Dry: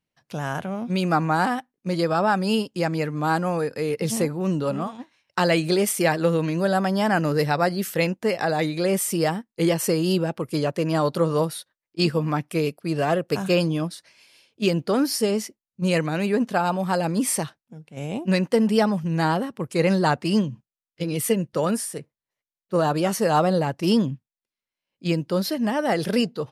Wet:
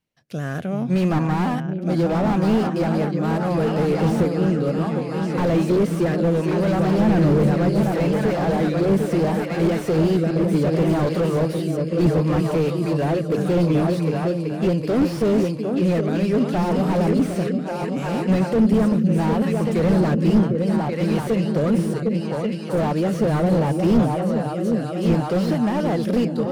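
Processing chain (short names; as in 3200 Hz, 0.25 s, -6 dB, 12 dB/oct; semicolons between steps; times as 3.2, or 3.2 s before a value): 6.99–7.5 sample leveller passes 1; on a send: repeats that get brighter 0.378 s, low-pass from 200 Hz, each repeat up 2 oct, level -3 dB; on the sum: rotary speaker horn 0.7 Hz; slew limiter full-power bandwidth 36 Hz; gain +5 dB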